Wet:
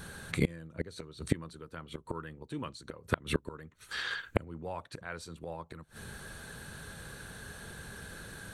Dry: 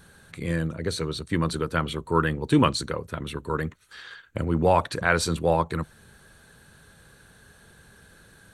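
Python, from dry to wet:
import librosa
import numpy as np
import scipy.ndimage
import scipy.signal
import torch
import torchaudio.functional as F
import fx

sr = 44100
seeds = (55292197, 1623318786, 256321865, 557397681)

y = fx.gate_flip(x, sr, shuts_db=-21.0, range_db=-27)
y = y * 10.0 ** (7.0 / 20.0)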